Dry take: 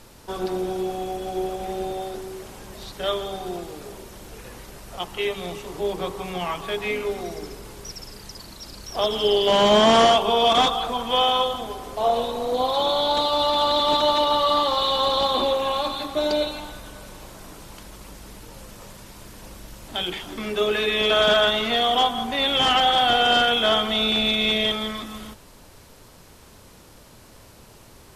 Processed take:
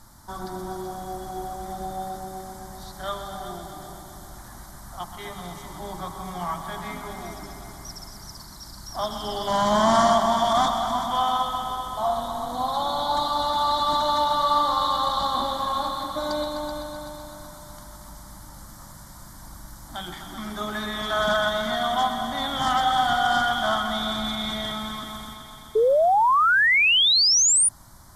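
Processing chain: fixed phaser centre 1100 Hz, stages 4; multi-head echo 0.127 s, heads all three, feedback 59%, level -12.5 dB; painted sound rise, 25.75–27.69, 420–9800 Hz -18 dBFS

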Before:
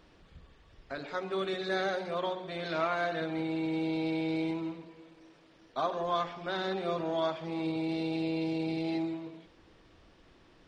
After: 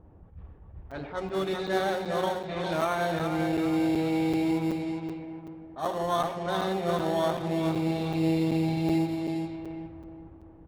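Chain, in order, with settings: on a send: feedback echo 0.408 s, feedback 42%, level -6 dB; on the sum: low-pass opened by the level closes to 2700 Hz; bell 82 Hz +12.5 dB 1.8 oct; in parallel at -9 dB: sample-and-hold 18×; on the sum: bell 830 Hz +5.5 dB 0.32 oct; low-pass opened by the level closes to 790 Hz, open at -25.5 dBFS; crackling interface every 0.38 s, samples 256, zero, from 0.91; attack slew limiter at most 180 dB/s

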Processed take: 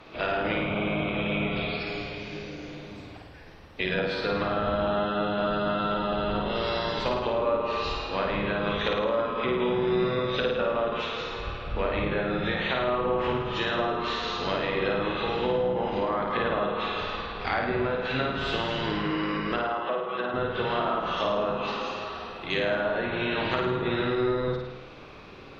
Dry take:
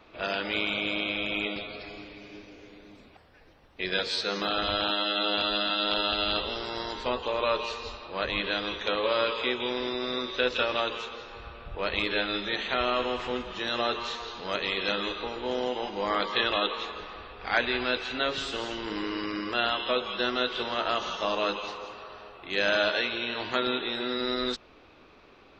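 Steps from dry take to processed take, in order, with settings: octaver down 1 oct, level -3 dB; treble ducked by the level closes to 1200 Hz, closed at -25 dBFS; compressor, threshold -31 dBFS, peak gain reduction 8.5 dB; 19.56–20.34 band-pass 890 Hz, Q 0.61; on a send: flutter echo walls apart 9.2 m, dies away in 0.92 s; on the sum: gain +6 dB

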